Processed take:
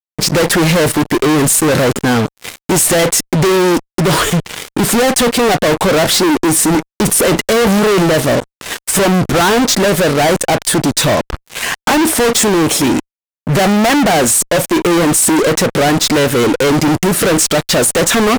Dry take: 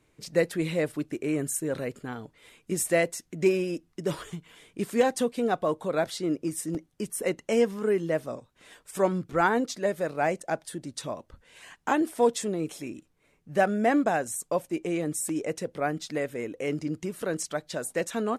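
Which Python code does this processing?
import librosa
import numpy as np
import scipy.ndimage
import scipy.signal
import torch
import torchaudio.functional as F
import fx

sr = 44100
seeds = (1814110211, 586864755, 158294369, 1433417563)

y = fx.transient(x, sr, attack_db=2, sustain_db=8, at=(7.02, 8.03))
y = fx.fuzz(y, sr, gain_db=48.0, gate_db=-50.0)
y = y * librosa.db_to_amplitude(3.5)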